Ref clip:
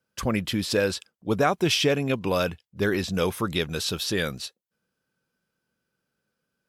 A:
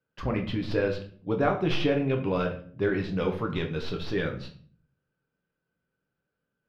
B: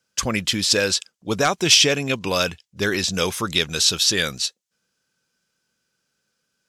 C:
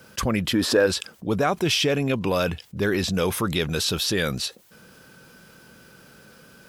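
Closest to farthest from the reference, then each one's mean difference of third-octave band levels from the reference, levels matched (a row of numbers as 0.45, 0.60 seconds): C, B, A; 2.5, 3.5, 9.0 decibels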